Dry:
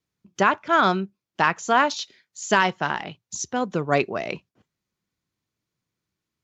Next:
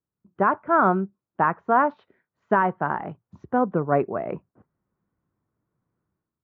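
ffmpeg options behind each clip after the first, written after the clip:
-af "lowpass=f=1400:w=0.5412,lowpass=f=1400:w=1.3066,dynaudnorm=f=150:g=5:m=4.22,volume=0.531"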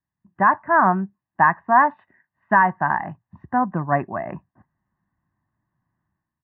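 -af "lowpass=f=1800:t=q:w=2.6,aecho=1:1:1.1:0.84,volume=0.841"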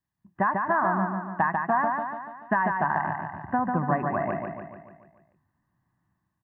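-filter_complex "[0:a]acompressor=threshold=0.0794:ratio=5,asplit=2[s0][s1];[s1]aecho=0:1:145|290|435|580|725|870|1015:0.631|0.341|0.184|0.0994|0.0537|0.029|0.0156[s2];[s0][s2]amix=inputs=2:normalize=0"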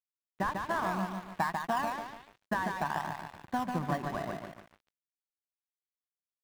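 -filter_complex "[0:a]asplit=2[s0][s1];[s1]acrusher=samples=27:mix=1:aa=0.000001:lfo=1:lforange=27:lforate=0.53,volume=0.251[s2];[s0][s2]amix=inputs=2:normalize=0,aeval=exprs='sgn(val(0))*max(abs(val(0))-0.0141,0)':c=same,volume=0.447"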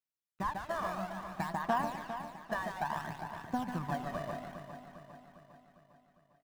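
-filter_complex "[0:a]aphaser=in_gain=1:out_gain=1:delay=1.7:decay=0.52:speed=0.59:type=sinusoidal,asplit=2[s0][s1];[s1]aecho=0:1:403|806|1209|1612|2015|2418:0.316|0.174|0.0957|0.0526|0.0289|0.0159[s2];[s0][s2]amix=inputs=2:normalize=0,volume=0.531"

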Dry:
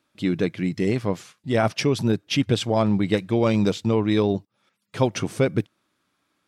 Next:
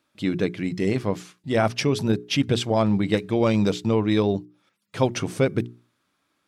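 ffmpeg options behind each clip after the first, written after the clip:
-af "bandreject=f=60:t=h:w=6,bandreject=f=120:t=h:w=6,bandreject=f=180:t=h:w=6,bandreject=f=240:t=h:w=6,bandreject=f=300:t=h:w=6,bandreject=f=360:t=h:w=6,bandreject=f=420:t=h:w=6"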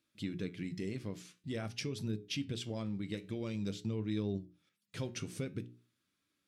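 -af "equalizer=f=840:w=0.87:g=-13,acompressor=threshold=0.0316:ratio=3,flanger=delay=9.1:depth=4.2:regen=78:speed=0.5:shape=sinusoidal,volume=0.75"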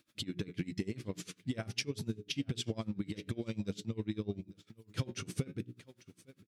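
-af "acompressor=threshold=0.00708:ratio=6,aecho=1:1:855:0.119,aeval=exprs='val(0)*pow(10,-23*(0.5-0.5*cos(2*PI*10*n/s))/20)':c=same,volume=5.01"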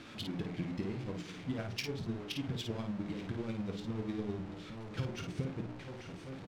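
-af "aeval=exprs='val(0)+0.5*0.0141*sgn(val(0))':c=same,adynamicsmooth=sensitivity=5:basefreq=2700,aecho=1:1:23|53:0.282|0.531,volume=0.631"

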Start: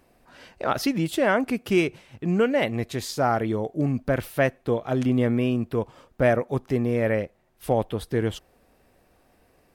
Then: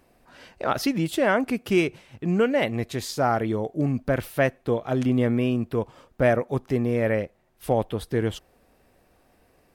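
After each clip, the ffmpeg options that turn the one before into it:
-af anull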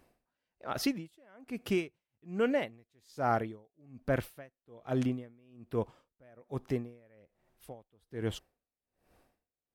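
-af "aeval=exprs='val(0)*pow(10,-35*(0.5-0.5*cos(2*PI*1.2*n/s))/20)':c=same,volume=0.562"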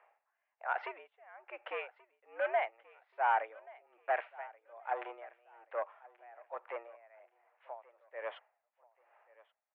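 -af "asoftclip=type=tanh:threshold=0.0473,aecho=1:1:1131|2262:0.0794|0.0262,highpass=f=530:t=q:w=0.5412,highpass=f=530:t=q:w=1.307,lowpass=f=2300:t=q:w=0.5176,lowpass=f=2300:t=q:w=0.7071,lowpass=f=2300:t=q:w=1.932,afreqshift=110,volume=1.78"

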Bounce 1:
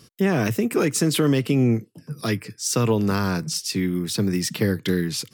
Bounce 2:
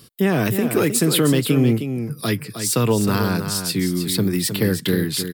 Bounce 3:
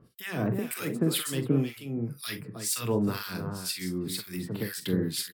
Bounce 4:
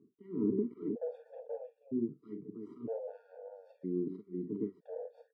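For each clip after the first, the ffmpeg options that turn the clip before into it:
-af "aecho=1:1:312:0.376,aexciter=amount=1.3:drive=4.3:freq=3300,volume=1.26"
-filter_complex "[0:a]asplit=2[s0][s1];[s1]aecho=0:1:43|59:0.335|0.2[s2];[s0][s2]amix=inputs=2:normalize=0,acrossover=split=1400[s3][s4];[s3]aeval=exprs='val(0)*(1-1/2+1/2*cos(2*PI*2*n/s))':c=same[s5];[s4]aeval=exprs='val(0)*(1-1/2-1/2*cos(2*PI*2*n/s))':c=same[s6];[s5][s6]amix=inputs=2:normalize=0,volume=0.473"
-af "aeval=exprs='0.237*(cos(1*acos(clip(val(0)/0.237,-1,1)))-cos(1*PI/2))+0.0299*(cos(4*acos(clip(val(0)/0.237,-1,1)))-cos(4*PI/2))+0.0211*(cos(8*acos(clip(val(0)/0.237,-1,1)))-cos(8*PI/2))':c=same,asuperpass=centerf=330:order=4:qfactor=1.2,afftfilt=real='re*gt(sin(2*PI*0.52*pts/sr)*(1-2*mod(floor(b*sr/1024/470),2)),0)':imag='im*gt(sin(2*PI*0.52*pts/sr)*(1-2*mod(floor(b*sr/1024/470),2)),0)':win_size=1024:overlap=0.75"

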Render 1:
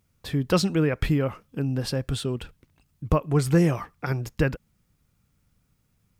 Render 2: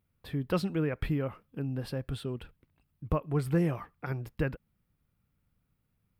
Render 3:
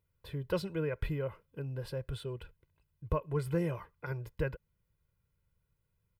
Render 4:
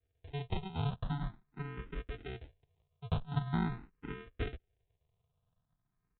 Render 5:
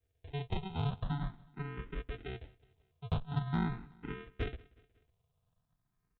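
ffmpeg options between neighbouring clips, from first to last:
-af "equalizer=f=6500:w=1.3:g=-13.5,volume=0.422"
-af "aecho=1:1:2:0.73,volume=0.562"
-filter_complex "[0:a]aresample=8000,acrusher=samples=14:mix=1:aa=0.000001,aresample=44100,asplit=2[s0][s1];[s1]afreqshift=0.44[s2];[s0][s2]amix=inputs=2:normalize=1,volume=1.12"
-af "asoftclip=type=tanh:threshold=0.0794,aecho=1:1:183|366|549:0.0668|0.0334|0.0167,volume=1.12"

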